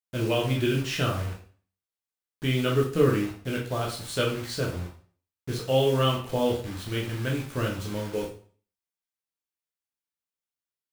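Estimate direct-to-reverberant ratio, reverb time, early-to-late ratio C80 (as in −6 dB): −2.5 dB, 0.45 s, 11.5 dB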